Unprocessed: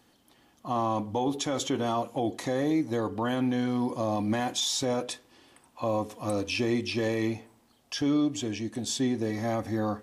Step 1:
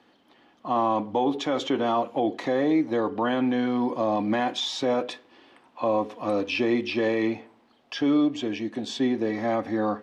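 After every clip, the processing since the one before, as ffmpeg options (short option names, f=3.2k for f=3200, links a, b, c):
-filter_complex "[0:a]acrossover=split=190 4100:gain=0.178 1 0.0708[a][b][c];[a][b][c]amix=inputs=3:normalize=0,volume=5dB"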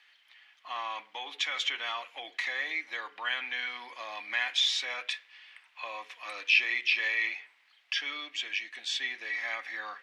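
-af "highpass=f=2.1k:t=q:w=2.7"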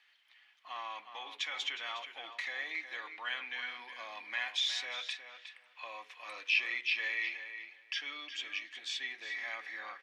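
-filter_complex "[0:a]asplit=2[a][b];[b]adelay=362,lowpass=f=4.2k:p=1,volume=-9dB,asplit=2[c][d];[d]adelay=362,lowpass=f=4.2k:p=1,volume=0.17,asplit=2[e][f];[f]adelay=362,lowpass=f=4.2k:p=1,volume=0.17[g];[a][c][e][g]amix=inputs=4:normalize=0,volume=-6dB"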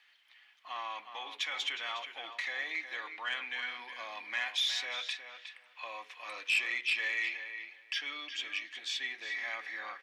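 -af "asoftclip=type=tanh:threshold=-24dB,volume=2.5dB"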